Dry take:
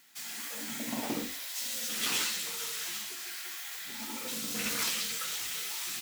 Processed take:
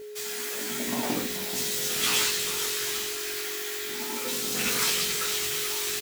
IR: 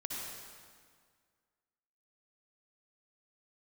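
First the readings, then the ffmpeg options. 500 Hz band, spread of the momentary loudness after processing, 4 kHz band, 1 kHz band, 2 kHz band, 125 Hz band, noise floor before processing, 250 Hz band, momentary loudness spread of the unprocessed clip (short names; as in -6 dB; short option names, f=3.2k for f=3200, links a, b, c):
+12.5 dB, 8 LU, +6.5 dB, +7.0 dB, +6.5 dB, +8.0 dB, -42 dBFS, +5.0 dB, 8 LU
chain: -filter_complex "[0:a]aeval=exprs='val(0)+0.00708*sin(2*PI*420*n/s)':c=same,asplit=2[a][b];[b]adelay=16,volume=-3.5dB[c];[a][c]amix=inputs=2:normalize=0,asplit=6[d][e][f][g][h][i];[e]adelay=431,afreqshift=-47,volume=-10.5dB[j];[f]adelay=862,afreqshift=-94,volume=-16.5dB[k];[g]adelay=1293,afreqshift=-141,volume=-22.5dB[l];[h]adelay=1724,afreqshift=-188,volume=-28.6dB[m];[i]adelay=2155,afreqshift=-235,volume=-34.6dB[n];[d][j][k][l][m][n]amix=inputs=6:normalize=0,volume=4.5dB"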